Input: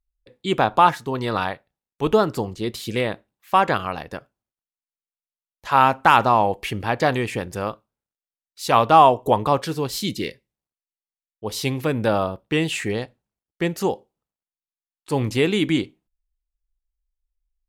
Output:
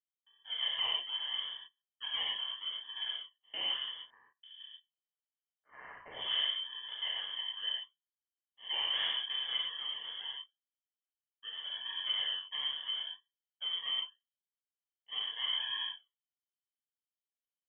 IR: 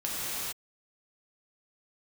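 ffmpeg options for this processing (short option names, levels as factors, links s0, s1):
-filter_complex "[0:a]highpass=f=220:w=0.5412,highpass=f=220:w=1.3066,acrusher=samples=40:mix=1:aa=0.000001:lfo=1:lforange=40:lforate=0.78,asplit=3[s0][s1][s2];[s0]bandpass=f=530:t=q:w=8,volume=1[s3];[s1]bandpass=f=1840:t=q:w=8,volume=0.501[s4];[s2]bandpass=f=2480:t=q:w=8,volume=0.355[s5];[s3][s4][s5]amix=inputs=3:normalize=0,asoftclip=type=tanh:threshold=0.0447,asettb=1/sr,asplit=3[s6][s7][s8];[s6]atrim=end=3.964[s9];[s7]atrim=start=3.96:end=6.31,asetpts=PTS-STARTPTS,afade=t=in:d=0.004:c=qsin,afade=t=out:st=2.346:d=0.004:c=qsin,acrossover=split=1700[s10][s11];[s10]adelay=470[s12];[s12][s11]amix=inputs=2:normalize=0,atrim=end_sample=103635[s13];[s8]atrim=start=6.306[s14];[s9][s13]acrossfade=d=0.004:c1=hsin:c2=qsin[s15];[s15][s14]acrossfade=d=0.004:c1=qsin:c2=hsin[s16];[1:a]atrim=start_sample=2205,atrim=end_sample=6174[s17];[s16][s17]afir=irnorm=-1:irlink=0,lowpass=f=3100:t=q:w=0.5098,lowpass=f=3100:t=q:w=0.6013,lowpass=f=3100:t=q:w=0.9,lowpass=f=3100:t=q:w=2.563,afreqshift=-3600,volume=0.531"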